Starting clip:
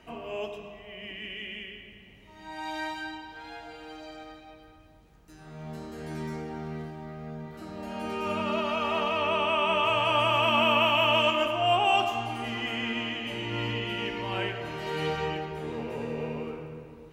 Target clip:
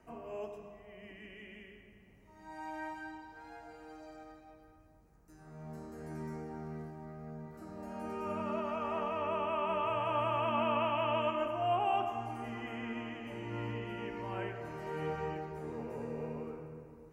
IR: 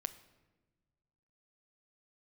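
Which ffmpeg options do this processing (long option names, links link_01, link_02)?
-filter_complex "[0:a]acrossover=split=500|4600[link_01][link_02][link_03];[link_02]lowpass=1700[link_04];[link_03]acompressor=threshold=-57dB:ratio=10[link_05];[link_01][link_04][link_05]amix=inputs=3:normalize=0,volume=-6.5dB"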